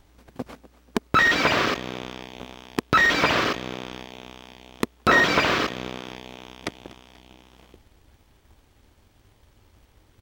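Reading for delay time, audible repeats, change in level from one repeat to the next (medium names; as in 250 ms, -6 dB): 243 ms, 2, -6.0 dB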